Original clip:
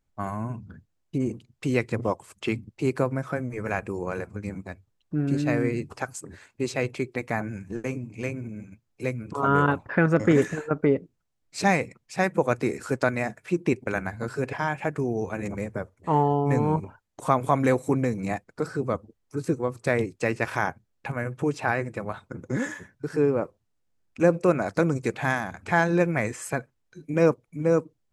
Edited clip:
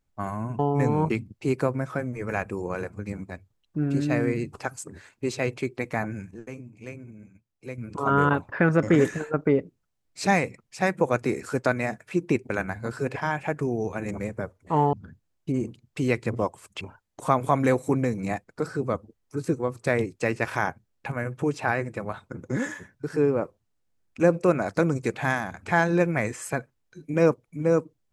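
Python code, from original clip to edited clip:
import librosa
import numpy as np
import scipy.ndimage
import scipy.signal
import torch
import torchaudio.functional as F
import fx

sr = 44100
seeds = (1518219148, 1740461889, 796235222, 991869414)

y = fx.edit(x, sr, fx.swap(start_s=0.59, length_s=1.88, other_s=16.3, other_length_s=0.51),
    fx.fade_down_up(start_s=7.52, length_s=1.79, db=-8.5, fade_s=0.16, curve='log'), tone=tone)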